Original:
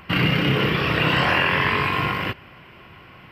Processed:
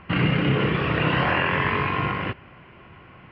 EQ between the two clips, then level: air absorption 370 m; 0.0 dB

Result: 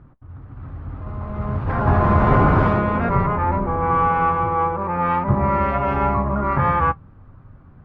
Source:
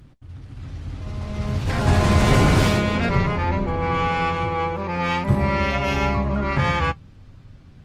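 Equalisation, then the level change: synth low-pass 1200 Hz, resonance Q 2.2; 0.0 dB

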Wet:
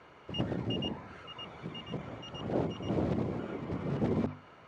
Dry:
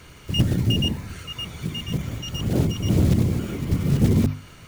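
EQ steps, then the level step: band-pass 770 Hz, Q 1.1; air absorption 69 m; 0.0 dB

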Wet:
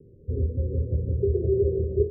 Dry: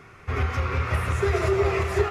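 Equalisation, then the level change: steep low-pass 540 Hz 96 dB/oct; dynamic EQ 210 Hz, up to +3 dB, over -49 dBFS, Q 4.2; 0.0 dB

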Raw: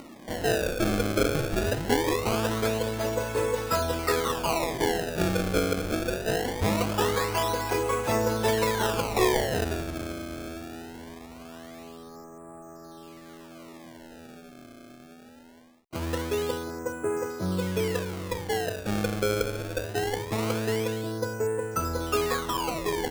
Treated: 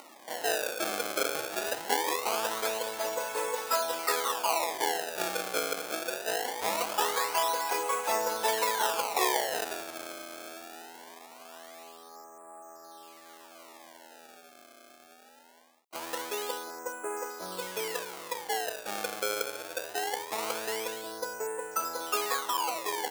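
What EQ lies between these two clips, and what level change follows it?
HPF 560 Hz 12 dB/oct; bell 850 Hz +5 dB 0.59 oct; high shelf 4900 Hz +6.5 dB; -3.0 dB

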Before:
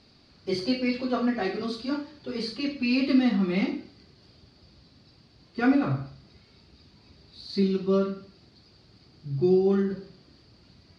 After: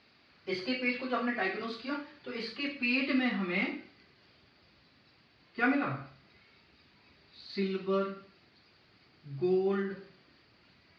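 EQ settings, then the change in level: band-pass 2200 Hz, Q 1.4; tilt -3 dB/oct; +7.0 dB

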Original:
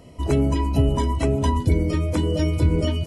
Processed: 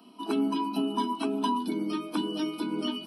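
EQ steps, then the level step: steep high-pass 200 Hz 72 dB/oct; fixed phaser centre 2000 Hz, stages 6; 0.0 dB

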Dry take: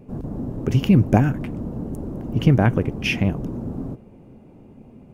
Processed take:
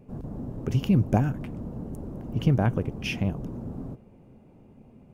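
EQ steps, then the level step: dynamic EQ 2000 Hz, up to -6 dB, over -42 dBFS, Q 1.7; bell 310 Hz -3 dB 0.88 oct; -5.5 dB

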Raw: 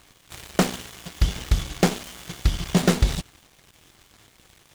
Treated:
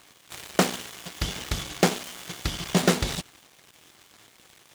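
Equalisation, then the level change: HPF 250 Hz 6 dB/oct; +1.0 dB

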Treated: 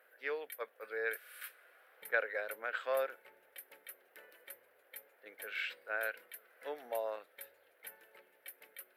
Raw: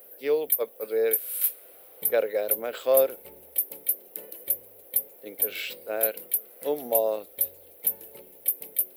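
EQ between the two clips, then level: band-pass 1600 Hz, Q 3.8; +6.0 dB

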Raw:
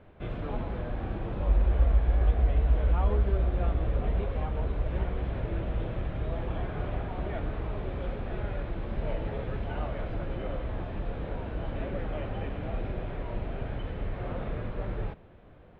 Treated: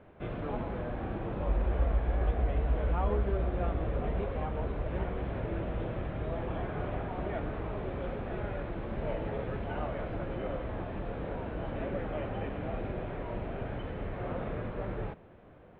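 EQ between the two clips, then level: air absorption 240 m; low shelf 95 Hz -10.5 dB; +2.0 dB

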